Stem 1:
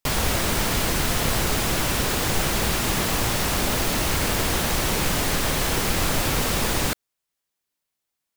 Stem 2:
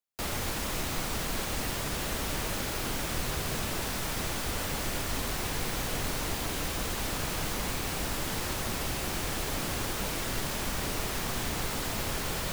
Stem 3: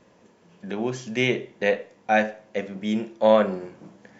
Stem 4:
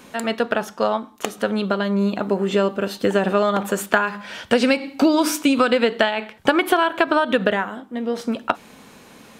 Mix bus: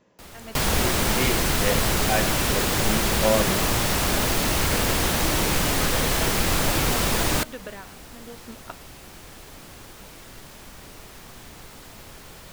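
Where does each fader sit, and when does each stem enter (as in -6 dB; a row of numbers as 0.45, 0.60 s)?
+0.5, -11.0, -5.0, -19.0 dB; 0.50, 0.00, 0.00, 0.20 s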